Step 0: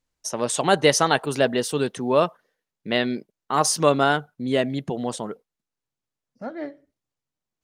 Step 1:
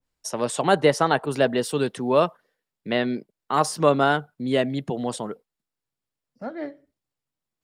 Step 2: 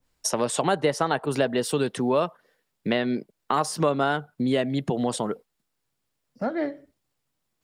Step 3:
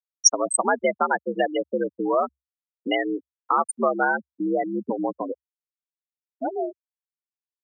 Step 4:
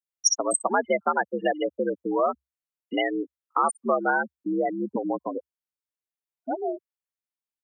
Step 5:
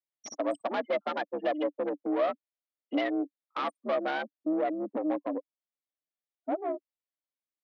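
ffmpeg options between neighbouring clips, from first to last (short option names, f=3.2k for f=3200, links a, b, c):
-filter_complex "[0:a]bandreject=f=6.2k:w=8.9,acrossover=split=170|2000[a][b][c];[c]alimiter=limit=-19.5dB:level=0:latency=1:release=498[d];[a][b][d]amix=inputs=3:normalize=0,adynamicequalizer=threshold=0.0355:dfrequency=1700:dqfactor=0.7:tfrequency=1700:tqfactor=0.7:attack=5:release=100:ratio=0.375:range=1.5:mode=cutabove:tftype=highshelf"
-af "acompressor=threshold=-32dB:ratio=3,volume=8.5dB"
-af "afftfilt=real='re*gte(hypot(re,im),0.158)':imag='im*gte(hypot(re,im),0.158)':win_size=1024:overlap=0.75,afreqshift=67,crystalizer=i=9:c=0,volume=-1.5dB"
-filter_complex "[0:a]acrossover=split=5100[a][b];[a]adelay=60[c];[c][b]amix=inputs=2:normalize=0,volume=-1.5dB"
-af "aeval=exprs='(tanh(17.8*val(0)+0.65)-tanh(0.65))/17.8':c=same,highpass=f=260:w=0.5412,highpass=f=260:w=1.3066,equalizer=f=290:t=q:w=4:g=8,equalizer=f=400:t=q:w=4:g=-7,equalizer=f=600:t=q:w=4:g=6,equalizer=f=940:t=q:w=4:g=-4,equalizer=f=1.5k:t=q:w=4:g=-5,equalizer=f=2.7k:t=q:w=4:g=-4,lowpass=f=4k:w=0.5412,lowpass=f=4k:w=1.3066"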